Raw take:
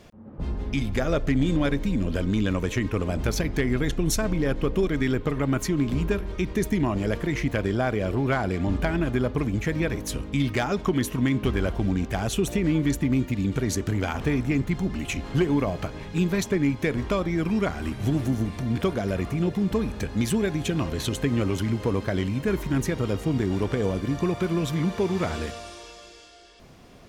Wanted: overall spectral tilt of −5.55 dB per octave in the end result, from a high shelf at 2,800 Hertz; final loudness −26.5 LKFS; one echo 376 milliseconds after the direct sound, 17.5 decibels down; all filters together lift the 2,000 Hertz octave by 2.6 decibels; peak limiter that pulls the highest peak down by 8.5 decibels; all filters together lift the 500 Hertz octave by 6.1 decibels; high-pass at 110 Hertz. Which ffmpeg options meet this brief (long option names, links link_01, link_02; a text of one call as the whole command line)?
ffmpeg -i in.wav -af "highpass=110,equalizer=frequency=500:width_type=o:gain=8,equalizer=frequency=2000:width_type=o:gain=5.5,highshelf=frequency=2800:gain=-7,alimiter=limit=-15.5dB:level=0:latency=1,aecho=1:1:376:0.133,volume=-0.5dB" out.wav